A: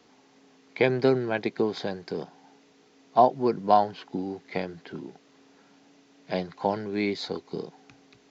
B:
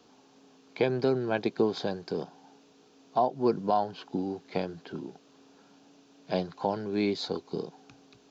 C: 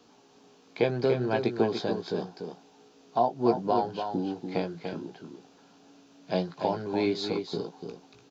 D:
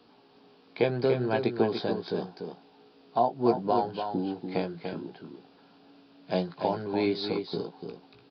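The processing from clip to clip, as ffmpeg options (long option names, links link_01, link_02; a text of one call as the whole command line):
ffmpeg -i in.wav -af "equalizer=frequency=2000:width_type=o:width=0.34:gain=-11,alimiter=limit=-14dB:level=0:latency=1:release=264" out.wav
ffmpeg -i in.wav -filter_complex "[0:a]asplit=2[link_01][link_02];[link_02]adelay=17,volume=-7dB[link_03];[link_01][link_03]amix=inputs=2:normalize=0,asplit=2[link_04][link_05];[link_05]aecho=0:1:291:0.447[link_06];[link_04][link_06]amix=inputs=2:normalize=0" out.wav
ffmpeg -i in.wav -af "aresample=11025,aresample=44100" out.wav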